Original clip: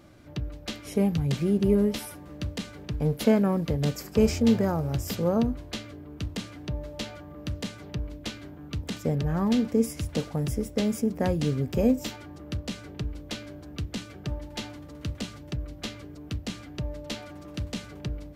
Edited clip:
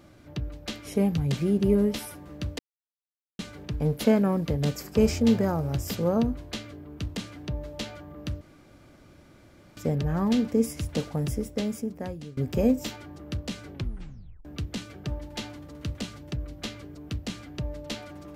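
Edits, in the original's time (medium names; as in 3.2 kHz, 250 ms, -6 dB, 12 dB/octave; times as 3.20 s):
2.59 s: insert silence 0.80 s
7.61–8.97 s: room tone
10.47–11.57 s: fade out, to -20.5 dB
12.93 s: tape stop 0.72 s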